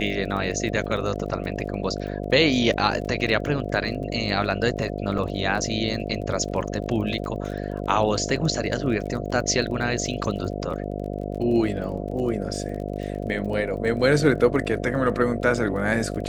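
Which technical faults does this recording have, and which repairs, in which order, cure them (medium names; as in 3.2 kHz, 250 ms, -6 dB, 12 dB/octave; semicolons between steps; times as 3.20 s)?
buzz 50 Hz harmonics 14 -30 dBFS
crackle 28 per s -33 dBFS
5.18 s: dropout 4.2 ms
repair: de-click; de-hum 50 Hz, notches 14; interpolate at 5.18 s, 4.2 ms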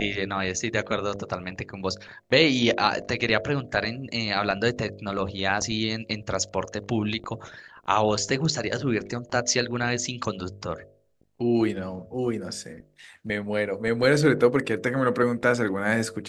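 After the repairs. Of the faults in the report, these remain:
nothing left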